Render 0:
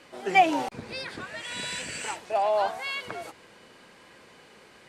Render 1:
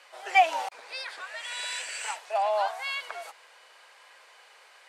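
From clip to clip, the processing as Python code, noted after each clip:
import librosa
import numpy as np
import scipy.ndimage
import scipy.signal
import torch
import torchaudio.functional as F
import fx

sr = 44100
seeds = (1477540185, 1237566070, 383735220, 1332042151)

y = scipy.signal.sosfilt(scipy.signal.butter(4, 630.0, 'highpass', fs=sr, output='sos'), x)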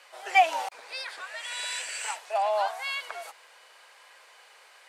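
y = fx.high_shelf(x, sr, hz=9900.0, db=6.0)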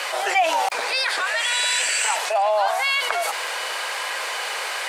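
y = fx.env_flatten(x, sr, amount_pct=70)
y = y * 10.0 ** (-1.0 / 20.0)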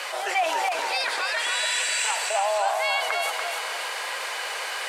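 y = fx.echo_feedback(x, sr, ms=288, feedback_pct=42, wet_db=-4.5)
y = y * 10.0 ** (-5.0 / 20.0)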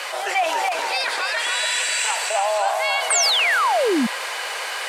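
y = fx.spec_paint(x, sr, seeds[0], shape='fall', start_s=3.1, length_s=0.97, low_hz=210.0, high_hz=9100.0, level_db=-22.0)
y = y * 10.0 ** (3.0 / 20.0)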